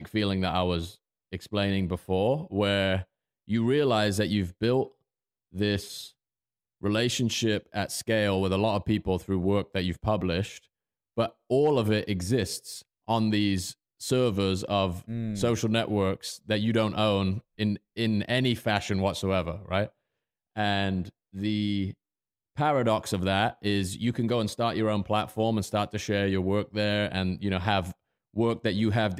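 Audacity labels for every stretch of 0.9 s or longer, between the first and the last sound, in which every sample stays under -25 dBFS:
5.770000	6.840000	silence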